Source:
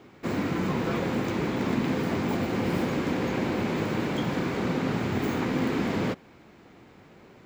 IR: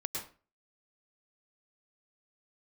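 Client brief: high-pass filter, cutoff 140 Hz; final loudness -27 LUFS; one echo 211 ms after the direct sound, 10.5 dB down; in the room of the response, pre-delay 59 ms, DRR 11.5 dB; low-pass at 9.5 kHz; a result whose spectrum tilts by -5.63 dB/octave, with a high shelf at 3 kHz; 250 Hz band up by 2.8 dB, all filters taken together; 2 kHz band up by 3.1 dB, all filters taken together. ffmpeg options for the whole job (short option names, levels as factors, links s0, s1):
-filter_complex "[0:a]highpass=140,lowpass=9500,equalizer=f=250:t=o:g=4,equalizer=f=2000:t=o:g=5.5,highshelf=f=3000:g=-5,aecho=1:1:211:0.299,asplit=2[s0][s1];[1:a]atrim=start_sample=2205,adelay=59[s2];[s1][s2]afir=irnorm=-1:irlink=0,volume=0.211[s3];[s0][s3]amix=inputs=2:normalize=0,volume=0.841"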